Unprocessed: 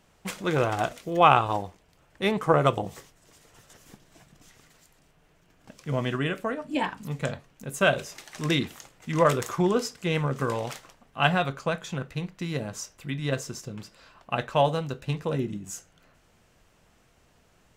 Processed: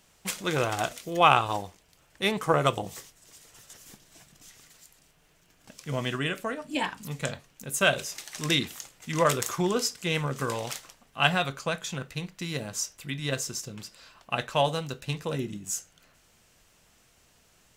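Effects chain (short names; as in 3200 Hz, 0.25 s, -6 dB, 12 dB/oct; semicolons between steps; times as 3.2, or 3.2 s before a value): high shelf 2600 Hz +11.5 dB; gain -3.5 dB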